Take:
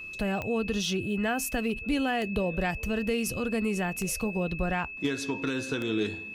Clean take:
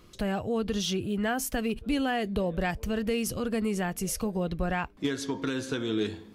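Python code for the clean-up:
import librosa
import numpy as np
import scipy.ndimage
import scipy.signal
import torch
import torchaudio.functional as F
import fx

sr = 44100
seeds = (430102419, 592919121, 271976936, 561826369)

y = fx.fix_declick_ar(x, sr, threshold=10.0)
y = fx.notch(y, sr, hz=2600.0, q=30.0)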